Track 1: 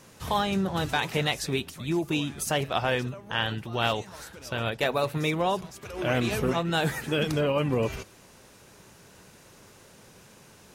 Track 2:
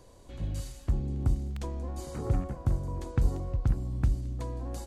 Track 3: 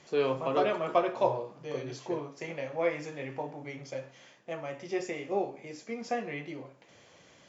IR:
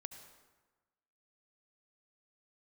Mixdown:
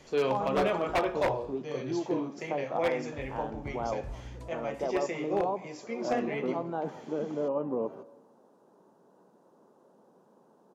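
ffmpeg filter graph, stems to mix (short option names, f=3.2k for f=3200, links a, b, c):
-filter_complex "[0:a]highpass=f=210:w=0.5412,highpass=f=210:w=1.3066,acrossover=split=3100[a][b];[b]acompressor=threshold=-51dB:ratio=4:attack=1:release=60[c];[a][c]amix=inputs=2:normalize=0,firequalizer=gain_entry='entry(910,0);entry(2200,-30);entry(3200,-23)':delay=0.05:min_phase=1,volume=-7dB,asplit=2[d][e];[e]volume=-4dB[f];[1:a]volume=-9dB,asplit=3[g][h][i];[g]atrim=end=1.43,asetpts=PTS-STARTPTS,afade=t=out:st=1.426:d=0.004:c=hsin[j];[h]atrim=start=1.43:end=3.13,asetpts=PTS-STARTPTS,volume=0[k];[i]atrim=start=3.13,asetpts=PTS-STARTPTS,afade=t=in:d=0.004:c=hsin[l];[j][k][l]concat=n=3:v=0:a=1,asplit=2[m][n];[n]volume=-19.5dB[o];[2:a]volume=0.5dB,asplit=2[p][q];[q]apad=whole_len=214386[r];[m][r]sidechaincompress=threshold=-47dB:ratio=8:attack=16:release=160[s];[3:a]atrim=start_sample=2205[t];[f][t]afir=irnorm=-1:irlink=0[u];[o]aecho=0:1:169:1[v];[d][s][p][u][v]amix=inputs=5:normalize=0,aeval=exprs='0.106*(abs(mod(val(0)/0.106+3,4)-2)-1)':c=same"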